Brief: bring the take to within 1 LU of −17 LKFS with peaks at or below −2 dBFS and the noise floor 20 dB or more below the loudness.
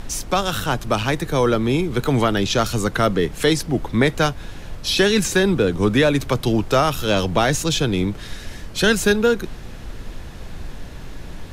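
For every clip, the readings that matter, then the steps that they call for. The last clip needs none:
background noise floor −35 dBFS; target noise floor −40 dBFS; integrated loudness −19.5 LKFS; sample peak −4.5 dBFS; target loudness −17.0 LKFS
→ noise reduction from a noise print 6 dB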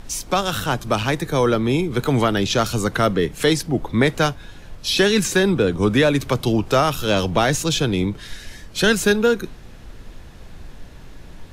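background noise floor −41 dBFS; integrated loudness −19.5 LKFS; sample peak −5.0 dBFS; target loudness −17.0 LKFS
→ level +2.5 dB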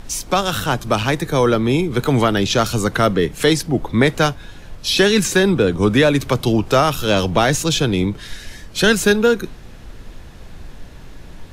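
integrated loudness −17.0 LKFS; sample peak −2.5 dBFS; background noise floor −38 dBFS

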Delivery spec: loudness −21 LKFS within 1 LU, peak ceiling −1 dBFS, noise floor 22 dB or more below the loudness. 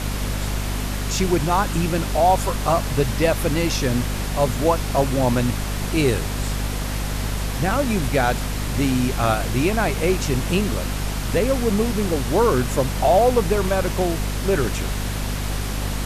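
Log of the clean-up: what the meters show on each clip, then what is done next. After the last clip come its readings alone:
mains hum 50 Hz; hum harmonics up to 250 Hz; level of the hum −23 dBFS; background noise floor −26 dBFS; target noise floor −44 dBFS; integrated loudness −21.5 LKFS; sample peak −6.0 dBFS; target loudness −21.0 LKFS
→ hum removal 50 Hz, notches 5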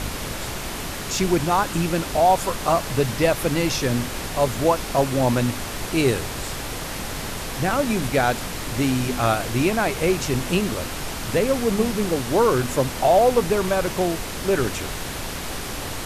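mains hum none found; background noise floor −31 dBFS; target noise floor −45 dBFS
→ noise reduction from a noise print 14 dB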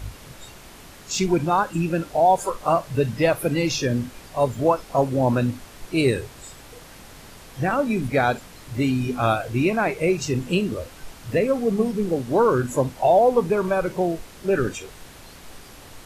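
background noise floor −45 dBFS; integrated loudness −22.5 LKFS; sample peak −7.5 dBFS; target loudness −21.0 LKFS
→ level +1.5 dB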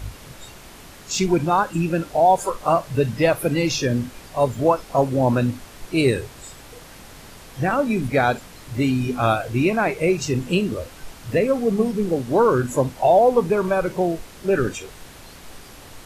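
integrated loudness −21.0 LKFS; sample peak −6.0 dBFS; background noise floor −43 dBFS

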